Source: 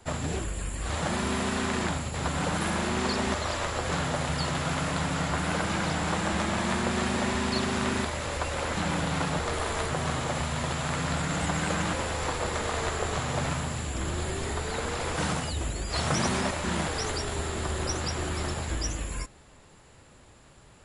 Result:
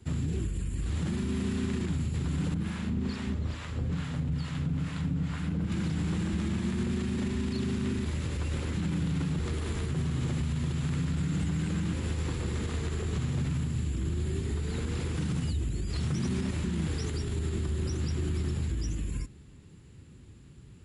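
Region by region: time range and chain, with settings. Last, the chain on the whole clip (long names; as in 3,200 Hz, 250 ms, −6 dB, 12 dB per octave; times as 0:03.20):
0:02.54–0:05.72: high-shelf EQ 5,000 Hz −9 dB + notch filter 360 Hz, Q 5.7 + two-band tremolo in antiphase 2.3 Hz, crossover 690 Hz
whole clip: drawn EQ curve 160 Hz 0 dB, 380 Hz −7 dB, 620 Hz −24 dB, 2,800 Hz −13 dB, 5,400 Hz −15 dB; brickwall limiter −30 dBFS; high-pass filter 54 Hz; level +7.5 dB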